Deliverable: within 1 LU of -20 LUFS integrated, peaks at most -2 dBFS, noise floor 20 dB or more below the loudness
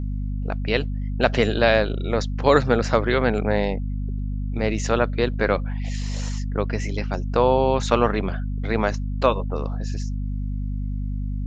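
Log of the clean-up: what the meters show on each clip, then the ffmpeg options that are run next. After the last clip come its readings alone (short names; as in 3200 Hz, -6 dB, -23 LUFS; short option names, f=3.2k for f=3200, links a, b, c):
hum 50 Hz; harmonics up to 250 Hz; hum level -24 dBFS; loudness -23.5 LUFS; peak -1.5 dBFS; loudness target -20.0 LUFS
-> -af "bandreject=f=50:t=h:w=6,bandreject=f=100:t=h:w=6,bandreject=f=150:t=h:w=6,bandreject=f=200:t=h:w=6,bandreject=f=250:t=h:w=6"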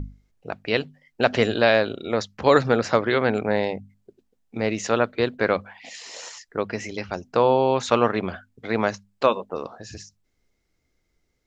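hum none; loudness -23.0 LUFS; peak -1.5 dBFS; loudness target -20.0 LUFS
-> -af "volume=3dB,alimiter=limit=-2dB:level=0:latency=1"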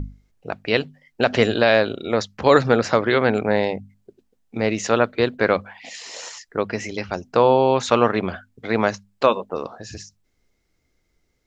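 loudness -20.5 LUFS; peak -2.0 dBFS; noise floor -69 dBFS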